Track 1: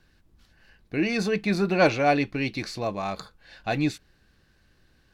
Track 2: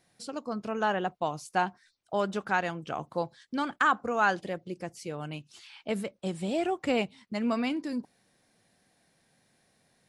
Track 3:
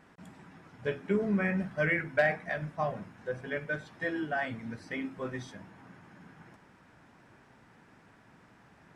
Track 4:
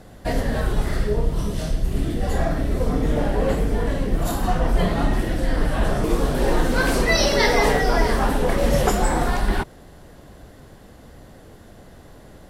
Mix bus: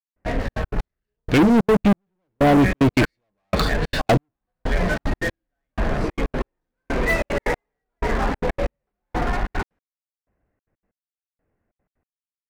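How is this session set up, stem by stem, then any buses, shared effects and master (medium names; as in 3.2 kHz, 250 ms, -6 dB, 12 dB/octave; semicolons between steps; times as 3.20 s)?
+3.0 dB, 0.40 s, no send, low-pass that closes with the level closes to 360 Hz, closed at -21 dBFS
mute
-11.5 dB, 1.20 s, no send, none
-19.5 dB, 0.00 s, no send, steep low-pass 2.6 kHz 72 dB/octave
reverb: none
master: peaking EQ 3.3 kHz +4 dB 1.7 oct; waveshaping leveller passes 5; trance gate "..xxxx.x.x...." 187 bpm -60 dB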